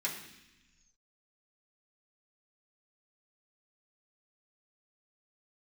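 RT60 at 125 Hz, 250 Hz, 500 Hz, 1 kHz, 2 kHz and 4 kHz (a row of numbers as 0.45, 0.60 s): 1.7, 1.4, 0.90, 0.95, 1.4, 1.5 s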